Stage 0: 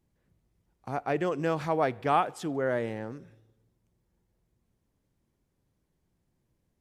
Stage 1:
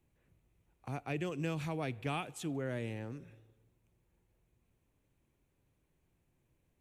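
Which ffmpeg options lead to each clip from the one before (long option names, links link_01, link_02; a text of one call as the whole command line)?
ffmpeg -i in.wav -filter_complex "[0:a]equalizer=frequency=200:width_type=o:width=0.33:gain=-6,equalizer=frequency=2500:width_type=o:width=0.33:gain=8,equalizer=frequency=5000:width_type=o:width=0.33:gain=-9,acrossover=split=260|3000[link_01][link_02][link_03];[link_02]acompressor=threshold=-53dB:ratio=2[link_04];[link_01][link_04][link_03]amix=inputs=3:normalize=0" out.wav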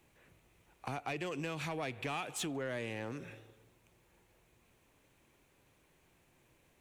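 ffmpeg -i in.wav -filter_complex "[0:a]acompressor=threshold=-43dB:ratio=6,asplit=2[link_01][link_02];[link_02]highpass=frequency=720:poles=1,volume=13dB,asoftclip=type=tanh:threshold=-35dB[link_03];[link_01][link_03]amix=inputs=2:normalize=0,lowpass=frequency=7600:poles=1,volume=-6dB,volume=6.5dB" out.wav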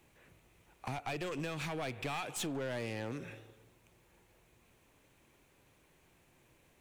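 ffmpeg -i in.wav -af "aeval=exprs='clip(val(0),-1,0.00944)':channel_layout=same,volume=2dB" out.wav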